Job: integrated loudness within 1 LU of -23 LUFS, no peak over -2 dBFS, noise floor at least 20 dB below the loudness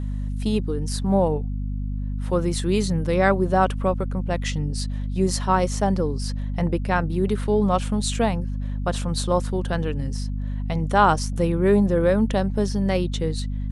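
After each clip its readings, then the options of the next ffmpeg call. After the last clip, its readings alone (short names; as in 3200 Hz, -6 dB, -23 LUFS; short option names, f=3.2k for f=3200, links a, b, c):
hum 50 Hz; harmonics up to 250 Hz; hum level -24 dBFS; loudness -23.5 LUFS; peak -4.5 dBFS; loudness target -23.0 LUFS
-> -af "bandreject=f=50:t=h:w=4,bandreject=f=100:t=h:w=4,bandreject=f=150:t=h:w=4,bandreject=f=200:t=h:w=4,bandreject=f=250:t=h:w=4"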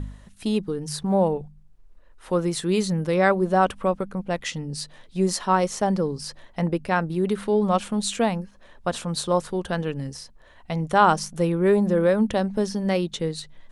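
hum none; loudness -24.0 LUFS; peak -4.5 dBFS; loudness target -23.0 LUFS
-> -af "volume=1dB"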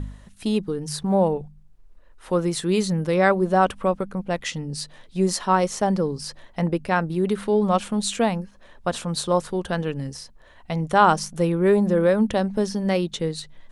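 loudness -23.0 LUFS; peak -3.5 dBFS; noise floor -50 dBFS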